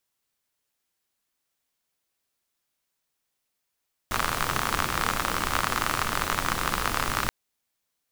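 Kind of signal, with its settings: rain from filtered ticks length 3.18 s, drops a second 55, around 1.2 kHz, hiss -2 dB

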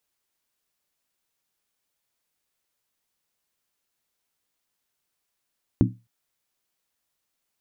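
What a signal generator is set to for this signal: skin hit length 0.26 s, lowest mode 117 Hz, decay 0.28 s, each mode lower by 1 dB, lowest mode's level -15.5 dB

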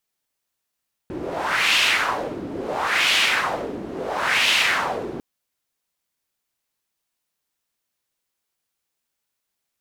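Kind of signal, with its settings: wind-like swept noise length 4.10 s, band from 300 Hz, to 2.9 kHz, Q 2.3, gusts 3, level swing 13 dB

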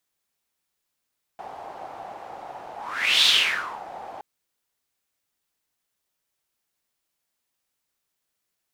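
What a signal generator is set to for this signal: whoosh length 2.82 s, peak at 1.86 s, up 0.52 s, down 0.62 s, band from 770 Hz, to 3.6 kHz, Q 5.2, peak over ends 21 dB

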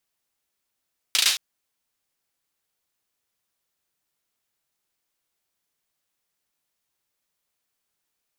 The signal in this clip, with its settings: hand clap length 0.22 s, apart 36 ms, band 3.7 kHz, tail 0.41 s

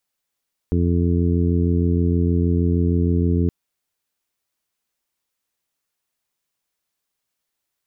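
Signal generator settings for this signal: steady additive tone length 2.77 s, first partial 86.4 Hz, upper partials -3.5/-5/-8.5/-10.5 dB, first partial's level -18 dB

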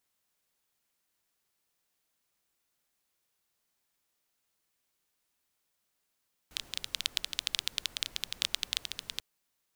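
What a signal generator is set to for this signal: rain from filtered ticks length 2.69 s, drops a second 13, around 3.5 kHz, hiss -18 dB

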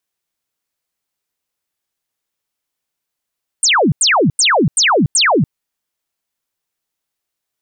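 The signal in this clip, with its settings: burst of laser zaps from 9.3 kHz, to 120 Hz, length 0.29 s sine, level -9 dB, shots 5, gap 0.09 s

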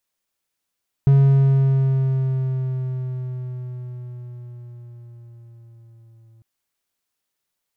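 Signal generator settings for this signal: gliding synth tone triangle, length 5.35 s, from 138 Hz, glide -3.5 st, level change -38.5 dB, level -7.5 dB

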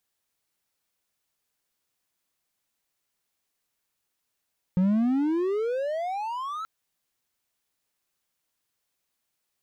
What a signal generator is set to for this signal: gliding synth tone triangle, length 1.88 s, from 178 Hz, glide +35 st, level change -12.5 dB, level -16.5 dB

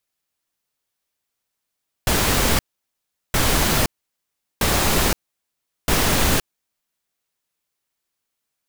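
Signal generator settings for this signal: noise bursts pink, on 0.52 s, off 0.75 s, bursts 4, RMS -18 dBFS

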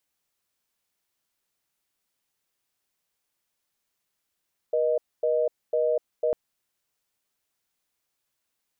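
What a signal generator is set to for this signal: call progress tone reorder tone, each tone -23.5 dBFS 1.60 s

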